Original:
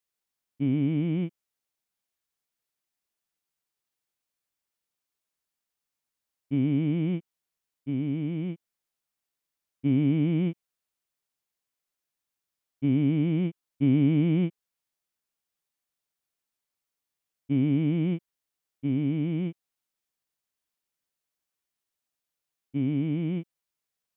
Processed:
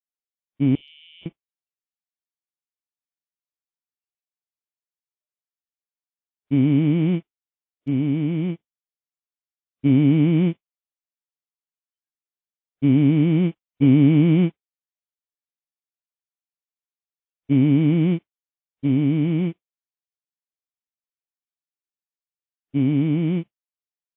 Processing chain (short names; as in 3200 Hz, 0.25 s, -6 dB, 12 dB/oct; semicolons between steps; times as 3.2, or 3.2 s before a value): spectral noise reduction 25 dB; 0.75–1.26 elliptic high-pass 2900 Hz, stop band 70 dB; gain +7.5 dB; AAC 24 kbps 22050 Hz